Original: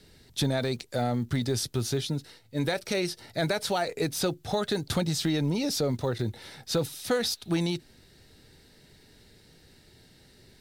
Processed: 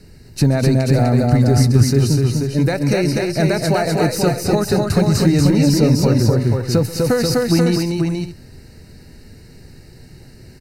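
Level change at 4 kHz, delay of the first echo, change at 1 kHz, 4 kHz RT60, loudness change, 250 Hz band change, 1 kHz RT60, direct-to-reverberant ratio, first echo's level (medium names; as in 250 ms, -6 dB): +6.0 dB, 132 ms, +10.5 dB, no reverb, +13.5 dB, +15.0 dB, no reverb, no reverb, -17.5 dB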